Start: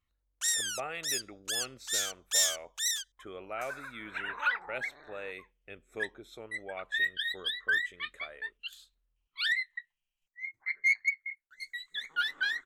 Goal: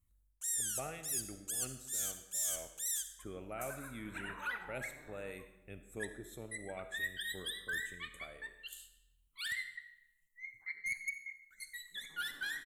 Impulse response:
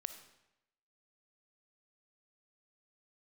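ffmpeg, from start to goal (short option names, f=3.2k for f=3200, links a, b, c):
-filter_complex "[0:a]firequalizer=gain_entry='entry(140,0);entry(440,-11);entry(1300,-15);entry(5000,-15);entry(7600,0);entry(11000,4);entry(16000,0)':delay=0.05:min_phase=1,areverse,acompressor=threshold=-42dB:ratio=6,areverse[a];[1:a]atrim=start_sample=2205[b];[a][b]afir=irnorm=-1:irlink=0,volume=10dB"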